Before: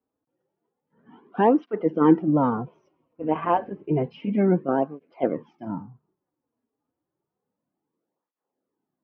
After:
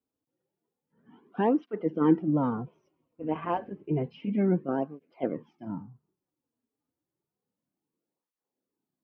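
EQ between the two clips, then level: peaking EQ 850 Hz -5.5 dB 2.4 oct; -3.0 dB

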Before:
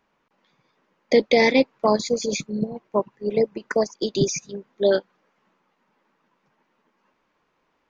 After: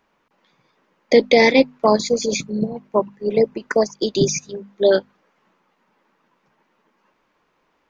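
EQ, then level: hum notches 50/100/150/200/250 Hz; +4.0 dB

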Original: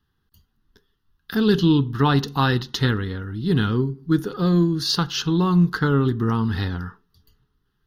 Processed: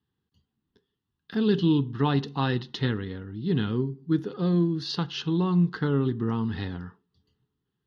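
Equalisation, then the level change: dynamic bell 1.8 kHz, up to +4 dB, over -39 dBFS, Q 0.73; band-pass 110–3300 Hz; peaking EQ 1.4 kHz -10.5 dB 0.93 oct; -4.5 dB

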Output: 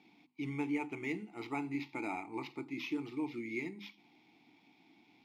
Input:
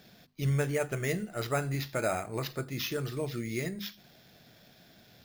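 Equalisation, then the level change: vowel filter u; bass shelf 440 Hz -8 dB; +11.5 dB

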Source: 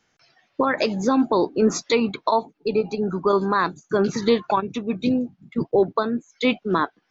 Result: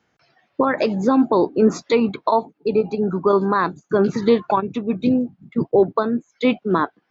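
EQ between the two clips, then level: high-pass 47 Hz; treble shelf 2.2 kHz -9.5 dB; peaking EQ 5.9 kHz -4 dB 0.23 oct; +3.5 dB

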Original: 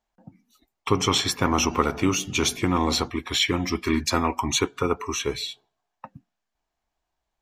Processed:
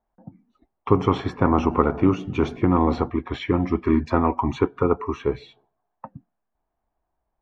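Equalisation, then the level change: low-pass 1.1 kHz 12 dB/octave; +4.5 dB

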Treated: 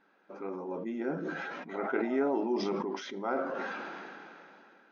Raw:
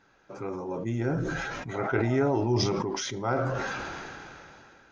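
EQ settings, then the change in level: brick-wall FIR high-pass 170 Hz; distance through air 220 m; -3.0 dB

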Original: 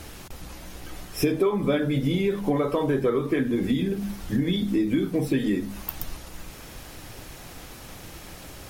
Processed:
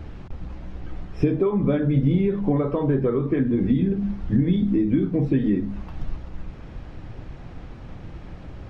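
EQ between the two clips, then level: tone controls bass +7 dB, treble 0 dB; tape spacing loss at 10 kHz 35 dB; +1.0 dB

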